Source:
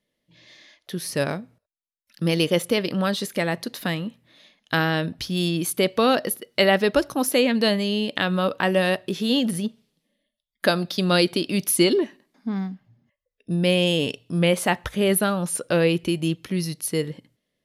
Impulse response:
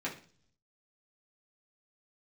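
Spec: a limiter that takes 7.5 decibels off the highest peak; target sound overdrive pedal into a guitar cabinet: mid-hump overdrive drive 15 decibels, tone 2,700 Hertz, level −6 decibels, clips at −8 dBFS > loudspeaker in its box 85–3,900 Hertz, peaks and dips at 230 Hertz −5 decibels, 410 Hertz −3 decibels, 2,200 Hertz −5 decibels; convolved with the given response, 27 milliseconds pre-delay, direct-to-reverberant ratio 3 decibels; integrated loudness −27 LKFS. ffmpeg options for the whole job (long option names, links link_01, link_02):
-filter_complex "[0:a]alimiter=limit=-13.5dB:level=0:latency=1,asplit=2[link_01][link_02];[1:a]atrim=start_sample=2205,adelay=27[link_03];[link_02][link_03]afir=irnorm=-1:irlink=0,volume=-7dB[link_04];[link_01][link_04]amix=inputs=2:normalize=0,asplit=2[link_05][link_06];[link_06]highpass=frequency=720:poles=1,volume=15dB,asoftclip=type=tanh:threshold=-8dB[link_07];[link_05][link_07]amix=inputs=2:normalize=0,lowpass=frequency=2700:poles=1,volume=-6dB,highpass=85,equalizer=frequency=230:width_type=q:width=4:gain=-5,equalizer=frequency=410:width_type=q:width=4:gain=-3,equalizer=frequency=2200:width_type=q:width=4:gain=-5,lowpass=frequency=3900:width=0.5412,lowpass=frequency=3900:width=1.3066,volume=-4dB"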